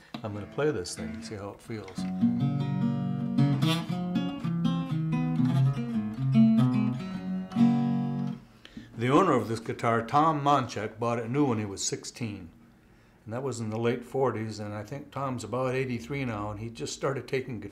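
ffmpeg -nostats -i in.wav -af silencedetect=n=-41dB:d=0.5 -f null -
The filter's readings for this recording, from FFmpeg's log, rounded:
silence_start: 12.48
silence_end: 13.27 | silence_duration: 0.79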